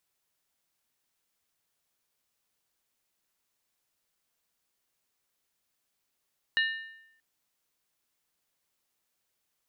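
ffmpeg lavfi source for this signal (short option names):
-f lavfi -i "aevalsrc='0.0794*pow(10,-3*t/0.83)*sin(2*PI*1800*t)+0.0422*pow(10,-3*t/0.657)*sin(2*PI*2869.2*t)+0.0224*pow(10,-3*t/0.568)*sin(2*PI*3844.8*t)+0.0119*pow(10,-3*t/0.548)*sin(2*PI*4132.8*t)':d=0.63:s=44100"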